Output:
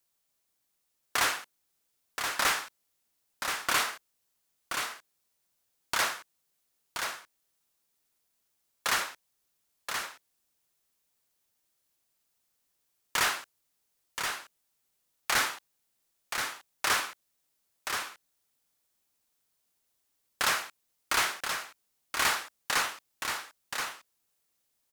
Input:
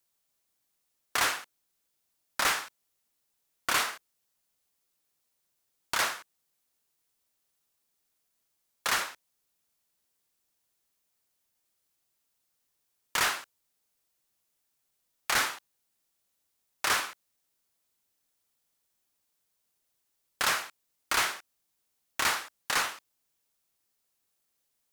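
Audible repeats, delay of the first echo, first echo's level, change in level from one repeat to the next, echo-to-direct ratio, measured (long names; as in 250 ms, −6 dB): 1, 1,027 ms, −6.0 dB, repeats not evenly spaced, −6.0 dB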